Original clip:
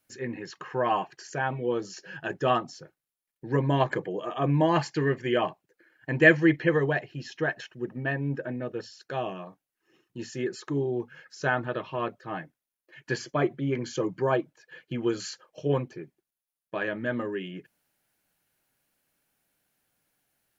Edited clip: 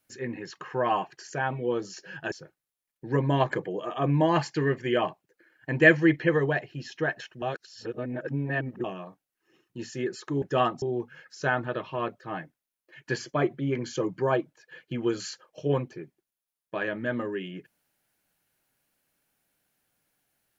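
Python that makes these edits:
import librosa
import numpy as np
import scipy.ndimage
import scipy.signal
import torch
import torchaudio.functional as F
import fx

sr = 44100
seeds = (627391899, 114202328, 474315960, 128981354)

y = fx.edit(x, sr, fx.move(start_s=2.32, length_s=0.4, to_s=10.82),
    fx.reverse_span(start_s=7.82, length_s=1.42), tone=tone)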